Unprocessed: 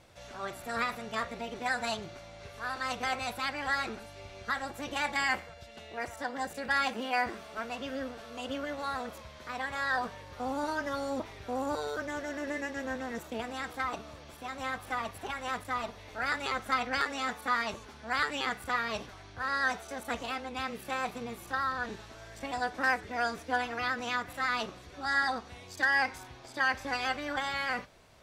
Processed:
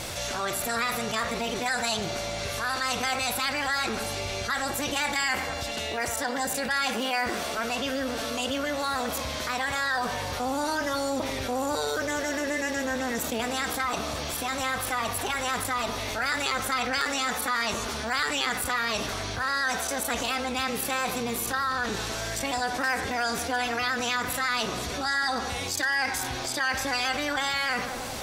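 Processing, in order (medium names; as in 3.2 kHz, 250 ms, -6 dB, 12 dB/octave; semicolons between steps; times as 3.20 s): treble shelf 3.7 kHz +12 dB; tape echo 92 ms, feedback 86%, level -15 dB, low-pass 1.1 kHz; level flattener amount 70%; trim -3 dB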